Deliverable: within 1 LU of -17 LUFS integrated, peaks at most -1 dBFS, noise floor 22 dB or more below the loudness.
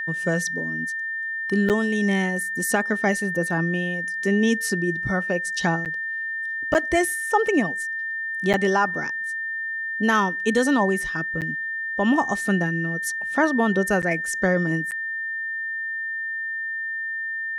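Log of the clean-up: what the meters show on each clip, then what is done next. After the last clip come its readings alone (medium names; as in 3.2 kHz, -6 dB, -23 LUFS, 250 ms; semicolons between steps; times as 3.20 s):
dropouts 7; longest dropout 8.2 ms; steady tone 1.8 kHz; tone level -26 dBFS; loudness -23.5 LUFS; peak level -8.5 dBFS; loudness target -17.0 LUFS
-> interpolate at 1.69/5.85/6.74/8.53/11.41/14.02/14.91 s, 8.2 ms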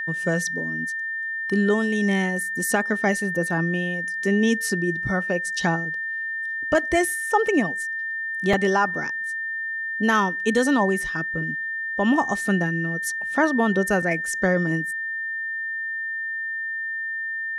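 dropouts 0; steady tone 1.8 kHz; tone level -26 dBFS
-> band-stop 1.8 kHz, Q 30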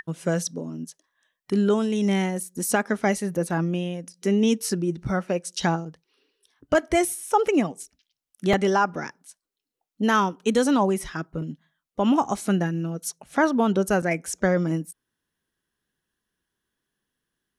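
steady tone not found; loudness -24.5 LUFS; peak level -9.0 dBFS; loudness target -17.0 LUFS
-> trim +7.5 dB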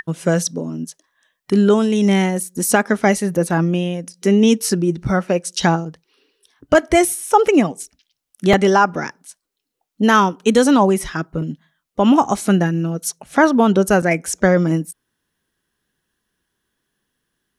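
loudness -17.0 LUFS; peak level -1.5 dBFS; noise floor -78 dBFS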